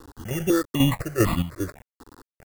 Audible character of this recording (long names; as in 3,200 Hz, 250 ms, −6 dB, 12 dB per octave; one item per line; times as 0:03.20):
aliases and images of a low sample rate 3,100 Hz, jitter 0%
chopped level 2.5 Hz, depth 60%, duty 55%
a quantiser's noise floor 8 bits, dither none
notches that jump at a steady rate 4 Hz 620–1,600 Hz